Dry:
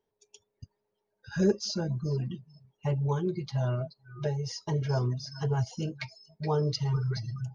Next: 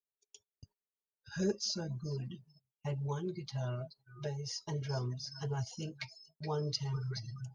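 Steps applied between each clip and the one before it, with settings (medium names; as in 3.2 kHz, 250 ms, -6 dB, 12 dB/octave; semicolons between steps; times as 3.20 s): treble shelf 2.6 kHz +8.5 dB; gate -52 dBFS, range -21 dB; trim -8.5 dB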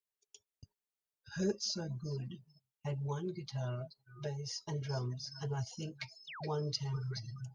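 painted sound fall, 6.27–6.50 s, 270–4000 Hz -46 dBFS; trim -1 dB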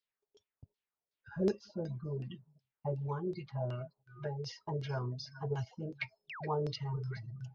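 LFO low-pass saw down 2.7 Hz 410–4900 Hz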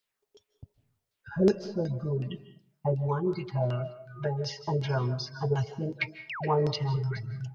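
algorithmic reverb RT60 0.49 s, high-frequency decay 0.65×, pre-delay 115 ms, DRR 13.5 dB; trim +8.5 dB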